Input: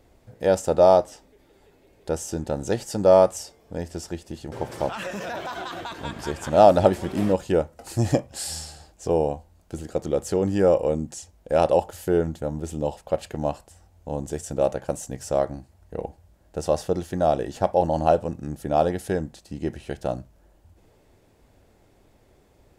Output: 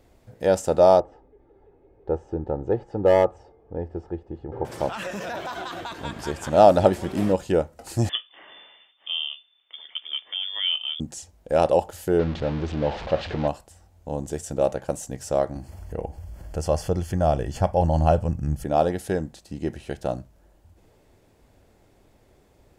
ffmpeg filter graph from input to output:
ffmpeg -i in.wav -filter_complex "[0:a]asettb=1/sr,asplit=3[link_01][link_02][link_03];[link_01]atrim=end=1.004[link_04];[link_02]atrim=start=1:end=4.65,asetpts=PTS-STARTPTS,afade=type=in:duration=0.004:curve=qsin,afade=type=out:start_time=3.646:duration=0.004:curve=qsin,lowpass=1000,volume=9.5dB,asoftclip=hard,volume=-9.5dB,aecho=1:1:2.4:0.45,atrim=end_sample=160965[link_05];[link_03]atrim=start=4.646[link_06];[link_04][link_05]acrossfade=duration=0.004:curve1=hsin:curve2=qsin[link_07];[link_07][link_06]acrossfade=duration=0.004:curve1=qsin:curve2=hsin,asettb=1/sr,asplit=3[link_08][link_09][link_10];[link_08]atrim=end=8.094[link_11];[link_09]atrim=start=8.09:end=11,asetpts=PTS-STARTPTS,afade=type=in:duration=0.004:curve=qsin,afade=type=out:start_time=2.906:duration=0.004:curve=qsin,lowpass=frequency=3100:width_type=q:width=0.5098,lowpass=frequency=3100:width_type=q:width=0.6013,lowpass=frequency=3100:width_type=q:width=0.9,lowpass=frequency=3100:width_type=q:width=2.563,afreqshift=-3600,acrossover=split=250 2500:gain=0.141 1 0.178[link_12][link_13][link_14];[link_12][link_13][link_14]amix=inputs=3:normalize=0[link_15];[link_10]atrim=start=10.996[link_16];[link_11][link_15]acrossfade=duration=0.004:curve1=hsin:curve2=qsin[link_17];[link_17][link_16]acrossfade=duration=0.004:curve1=qsin:curve2=hsin,asettb=1/sr,asplit=3[link_18][link_19][link_20];[link_18]atrim=end=12.194[link_21];[link_19]atrim=start=12.19:end=13.48,asetpts=PTS-STARTPTS,afade=type=in:duration=0.004:curve=qsin,afade=type=out:start_time=1.286:duration=0.004:curve=qsin,aeval=exprs='val(0)+0.5*0.0376*sgn(val(0))':channel_layout=same,lowpass=frequency=4300:width=0.5412,lowpass=frequency=4300:width=1.3066[link_22];[link_20]atrim=start=13.476[link_23];[link_21][link_22]acrossfade=duration=0.004:curve1=hsin:curve2=qsin[link_24];[link_24][link_23]acrossfade=duration=0.004:curve1=qsin:curve2=hsin,asettb=1/sr,asplit=3[link_25][link_26][link_27];[link_25]atrim=end=15.564[link_28];[link_26]atrim=start=15.56:end=18.64,asetpts=PTS-STARTPTS,afade=type=in:duration=0.004:curve=qsin,afade=type=out:start_time=3.076:duration=0.004:curve=qsin,asubboost=boost=8:cutoff=130,acompressor=mode=upward:threshold=-26dB:ratio=2.5:attack=3.2:release=140:knee=2.83:detection=peak,asuperstop=centerf=3800:order=8:qfactor=6.7[link_29];[link_27]atrim=start=18.636[link_30];[link_28][link_29]acrossfade=duration=0.004:curve1=hsin:curve2=qsin[link_31];[link_31][link_30]acrossfade=duration=0.004:curve1=qsin:curve2=hsin" out.wav

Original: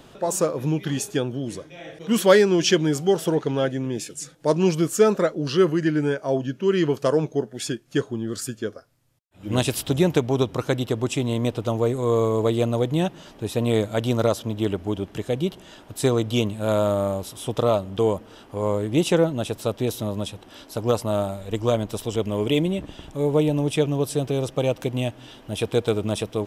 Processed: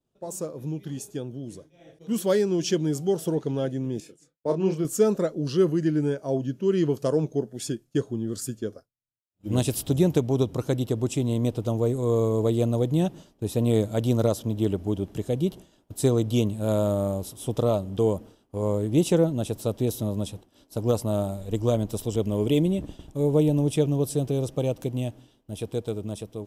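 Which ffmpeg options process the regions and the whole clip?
ffmpeg -i in.wav -filter_complex "[0:a]asettb=1/sr,asplit=3[link_01][link_02][link_03];[link_01]atrim=end=4.004[link_04];[link_02]atrim=start=4:end=4.85,asetpts=PTS-STARTPTS,afade=type=in:duration=0.004:curve=qsin,afade=type=out:start_time=0.846:duration=0.004:curve=qsin,bass=frequency=250:gain=-7,treble=frequency=4000:gain=-14,agate=range=-33dB:threshold=-52dB:ratio=3:release=100:detection=peak,asplit=2[link_05][link_06];[link_06]adelay=31,volume=-6dB[link_07];[link_05][link_07]amix=inputs=2:normalize=0,atrim=end_sample=37485[link_08];[link_03]atrim=start=4.846[link_09];[link_04][link_08]acrossfade=duration=0.004:curve1=hsin:curve2=qsin[link_10];[link_10][link_09]acrossfade=duration=0.004:curve1=qsin:curve2=hsin,agate=range=-33dB:threshold=-35dB:ratio=3:detection=peak,equalizer=frequency=1800:width=0.43:gain=-11.5,dynaudnorm=framelen=980:gausssize=5:maxgain=10dB,volume=-7dB" out.wav

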